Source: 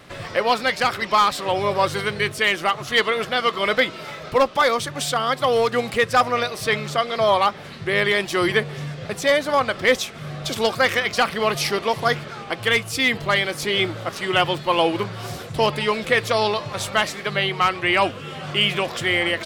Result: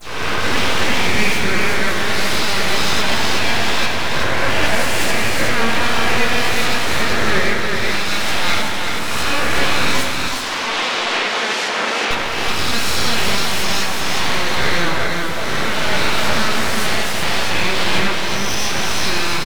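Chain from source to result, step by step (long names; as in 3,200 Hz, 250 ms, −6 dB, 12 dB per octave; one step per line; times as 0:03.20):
peak hold with a rise ahead of every peak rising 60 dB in 1.72 s
dynamic equaliser 1,100 Hz, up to +5 dB, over −27 dBFS, Q 0.85
brickwall limiter −6 dBFS, peak gain reduction 8 dB
all-pass dispersion lows, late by 73 ms, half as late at 1,300 Hz
full-wave rectification
0:10.08–0:12.11: band-pass filter 340–6,000 Hz
single-tap delay 371 ms −3.5 dB
dense smooth reverb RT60 2.1 s, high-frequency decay 0.9×, DRR 4 dB
level −1.5 dB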